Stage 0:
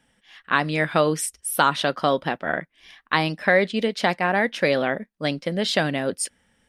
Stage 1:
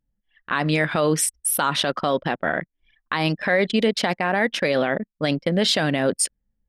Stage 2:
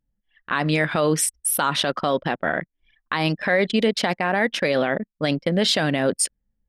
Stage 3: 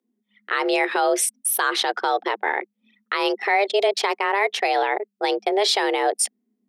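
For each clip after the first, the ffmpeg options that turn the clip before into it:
ffmpeg -i in.wav -af "anlmdn=2.51,alimiter=level_in=15dB:limit=-1dB:release=50:level=0:latency=1,volume=-9dB" out.wav
ffmpeg -i in.wav -af anull out.wav
ffmpeg -i in.wav -af "afreqshift=200" out.wav

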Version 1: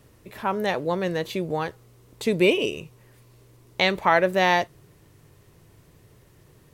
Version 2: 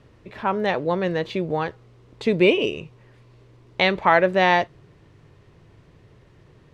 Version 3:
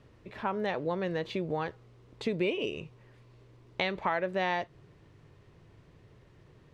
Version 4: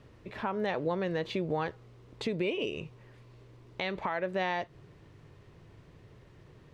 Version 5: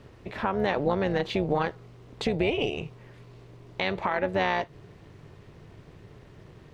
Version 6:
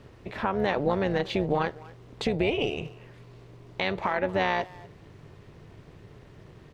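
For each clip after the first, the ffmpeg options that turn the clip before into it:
ffmpeg -i in.wav -af "lowpass=3800,volume=2.5dB" out.wav
ffmpeg -i in.wav -af "acompressor=threshold=-23dB:ratio=3,volume=-5.5dB" out.wav
ffmpeg -i in.wav -af "alimiter=limit=-24dB:level=0:latency=1:release=231,volume=2.5dB" out.wav
ffmpeg -i in.wav -af "tremolo=f=290:d=0.667,volume=8.5dB" out.wav
ffmpeg -i in.wav -filter_complex "[0:a]asplit=2[link_01][link_02];[link_02]adelay=240,highpass=300,lowpass=3400,asoftclip=type=hard:threshold=-22.5dB,volume=-19dB[link_03];[link_01][link_03]amix=inputs=2:normalize=0" out.wav

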